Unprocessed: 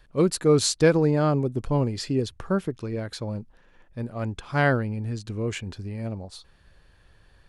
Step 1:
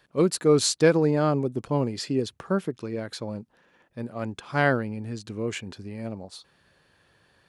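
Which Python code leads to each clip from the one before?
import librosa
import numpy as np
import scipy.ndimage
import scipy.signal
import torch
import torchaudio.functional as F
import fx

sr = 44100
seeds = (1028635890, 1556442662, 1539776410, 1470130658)

y = scipy.signal.sosfilt(scipy.signal.butter(2, 150.0, 'highpass', fs=sr, output='sos'), x)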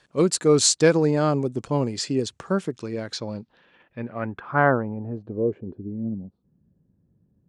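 y = fx.filter_sweep_lowpass(x, sr, from_hz=7600.0, to_hz=210.0, start_s=2.93, end_s=6.24, q=2.1)
y = y * librosa.db_to_amplitude(1.5)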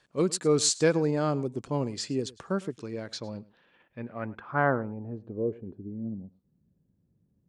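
y = x + 10.0 ** (-21.0 / 20.0) * np.pad(x, (int(105 * sr / 1000.0), 0))[:len(x)]
y = y * librosa.db_to_amplitude(-6.0)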